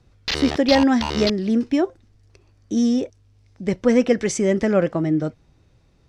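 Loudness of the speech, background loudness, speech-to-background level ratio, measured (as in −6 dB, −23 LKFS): −20.5 LKFS, −26.0 LKFS, 5.5 dB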